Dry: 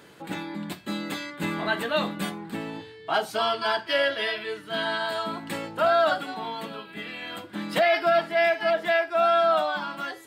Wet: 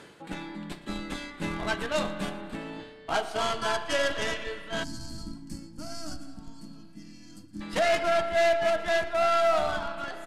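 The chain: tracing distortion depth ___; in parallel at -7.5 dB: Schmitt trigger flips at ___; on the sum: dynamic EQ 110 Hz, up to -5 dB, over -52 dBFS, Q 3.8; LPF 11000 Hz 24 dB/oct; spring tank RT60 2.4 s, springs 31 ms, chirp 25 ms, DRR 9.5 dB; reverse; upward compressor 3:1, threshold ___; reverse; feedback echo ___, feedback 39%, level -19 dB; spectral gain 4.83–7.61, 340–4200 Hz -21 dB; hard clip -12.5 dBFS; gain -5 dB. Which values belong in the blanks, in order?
0.11 ms, -23.5 dBFS, -31 dBFS, 0.116 s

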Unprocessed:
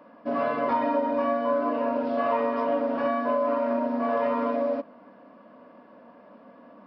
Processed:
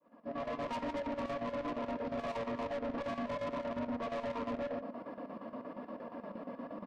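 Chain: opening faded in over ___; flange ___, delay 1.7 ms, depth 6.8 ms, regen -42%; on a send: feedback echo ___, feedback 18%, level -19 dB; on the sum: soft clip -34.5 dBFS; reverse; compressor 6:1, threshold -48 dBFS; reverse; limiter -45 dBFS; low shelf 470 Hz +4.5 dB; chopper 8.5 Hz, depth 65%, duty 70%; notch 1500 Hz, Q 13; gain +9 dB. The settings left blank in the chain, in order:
0.64 s, 0.99 Hz, 0.113 s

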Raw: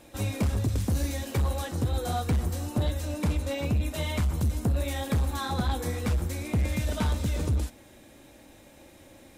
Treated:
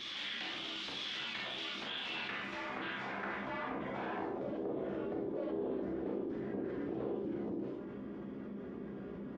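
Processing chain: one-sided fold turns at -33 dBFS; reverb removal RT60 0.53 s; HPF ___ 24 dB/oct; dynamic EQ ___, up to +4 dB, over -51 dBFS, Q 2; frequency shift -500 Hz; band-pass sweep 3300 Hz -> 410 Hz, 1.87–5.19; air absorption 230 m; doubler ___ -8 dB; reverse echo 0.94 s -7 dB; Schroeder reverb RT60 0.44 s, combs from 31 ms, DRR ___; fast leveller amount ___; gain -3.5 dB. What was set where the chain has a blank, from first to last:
190 Hz, 850 Hz, 15 ms, -1.5 dB, 70%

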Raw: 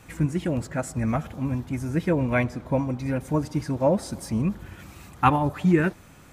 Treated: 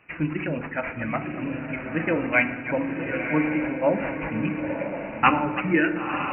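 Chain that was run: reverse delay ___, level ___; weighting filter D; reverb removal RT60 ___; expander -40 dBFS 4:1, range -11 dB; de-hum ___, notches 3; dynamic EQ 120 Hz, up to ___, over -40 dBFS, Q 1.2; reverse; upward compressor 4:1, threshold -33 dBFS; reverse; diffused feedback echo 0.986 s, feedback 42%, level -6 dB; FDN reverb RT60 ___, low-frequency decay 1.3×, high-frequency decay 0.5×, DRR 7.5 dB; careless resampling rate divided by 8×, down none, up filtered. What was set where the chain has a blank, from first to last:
0.181 s, -10 dB, 2 s, 89.58 Hz, -4 dB, 1.1 s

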